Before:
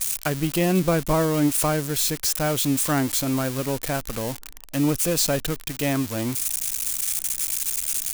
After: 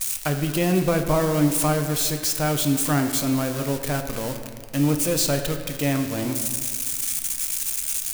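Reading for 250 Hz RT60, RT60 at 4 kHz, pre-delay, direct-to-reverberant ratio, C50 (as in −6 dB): 2.4 s, 1.2 s, 7 ms, 5.0 dB, 7.5 dB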